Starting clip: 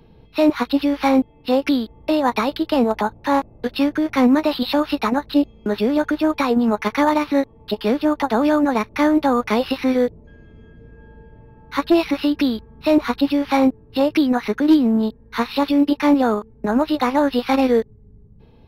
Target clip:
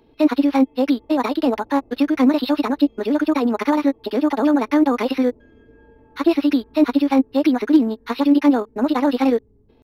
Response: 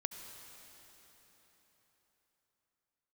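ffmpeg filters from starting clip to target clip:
-af "atempo=1.9,lowshelf=f=220:t=q:w=3:g=-6,volume=0.75"

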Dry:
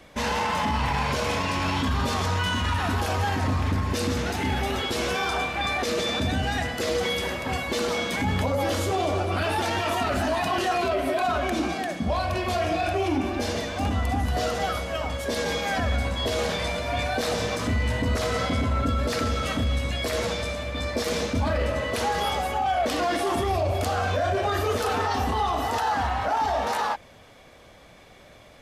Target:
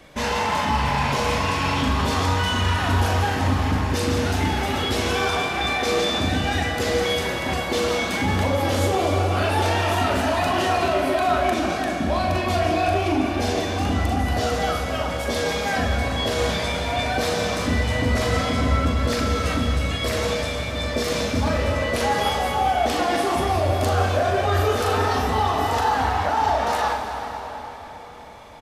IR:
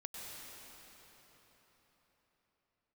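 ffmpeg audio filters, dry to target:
-filter_complex "[0:a]asplit=2[s0][s1];[s1]adelay=35,volume=0.224[s2];[s0][s2]amix=inputs=2:normalize=0,asplit=2[s3][s4];[1:a]atrim=start_sample=2205,adelay=42[s5];[s4][s5]afir=irnorm=-1:irlink=0,volume=0.891[s6];[s3][s6]amix=inputs=2:normalize=0,volume=1.19"

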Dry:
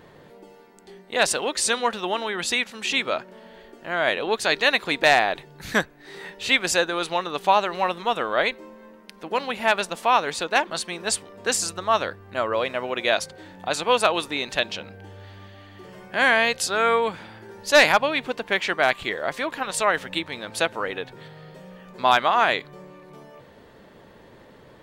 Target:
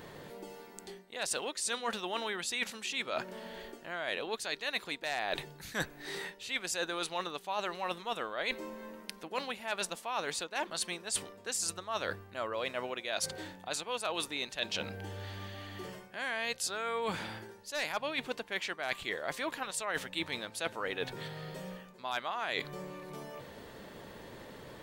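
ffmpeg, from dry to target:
-af "highshelf=f=4200:g=8.5,areverse,acompressor=threshold=0.0251:ratio=12,areverse"

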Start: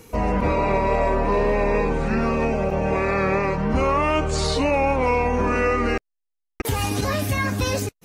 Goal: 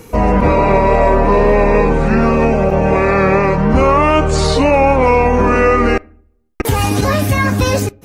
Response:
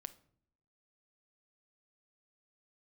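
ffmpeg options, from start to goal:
-filter_complex "[0:a]asplit=2[s0][s1];[1:a]atrim=start_sample=2205,asetrate=48510,aresample=44100,lowpass=2500[s2];[s1][s2]afir=irnorm=-1:irlink=0,volume=0.794[s3];[s0][s3]amix=inputs=2:normalize=0,volume=2.11"

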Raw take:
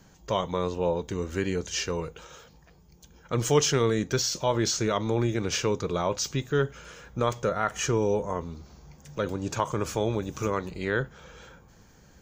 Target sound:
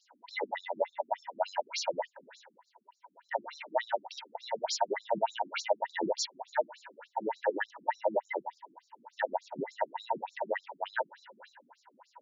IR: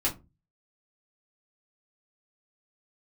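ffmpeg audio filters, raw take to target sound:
-af "afftfilt=real='real(if(between(b,1,1008),(2*floor((b-1)/48)+1)*48-b,b),0)':imag='imag(if(between(b,1,1008),(2*floor((b-1)/48)+1)*48-b,b),0)*if(between(b,1,1008),-1,1)':win_size=2048:overlap=0.75,aeval=exprs='0.355*(cos(1*acos(clip(val(0)/0.355,-1,1)))-cos(1*PI/2))+0.0282*(cos(3*acos(clip(val(0)/0.355,-1,1)))-cos(3*PI/2))+0.00708*(cos(4*acos(clip(val(0)/0.355,-1,1)))-cos(4*PI/2))+0.00562*(cos(5*acos(clip(val(0)/0.355,-1,1)))-cos(5*PI/2))':c=same,alimiter=limit=0.119:level=0:latency=1:release=37,highshelf=f=4600:g=-11.5,afftfilt=real='re*between(b*sr/1024,240*pow(5500/240,0.5+0.5*sin(2*PI*3.4*pts/sr))/1.41,240*pow(5500/240,0.5+0.5*sin(2*PI*3.4*pts/sr))*1.41)':imag='im*between(b*sr/1024,240*pow(5500/240,0.5+0.5*sin(2*PI*3.4*pts/sr))/1.41,240*pow(5500/240,0.5+0.5*sin(2*PI*3.4*pts/sr))*1.41)':win_size=1024:overlap=0.75,volume=1.88"

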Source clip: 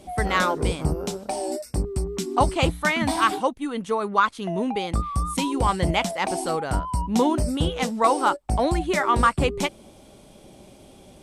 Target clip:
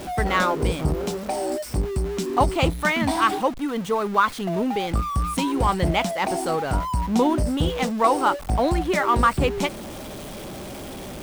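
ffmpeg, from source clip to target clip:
-af "aeval=exprs='val(0)+0.5*0.0299*sgn(val(0))':c=same,equalizer=f=8800:w=0.45:g=-4"

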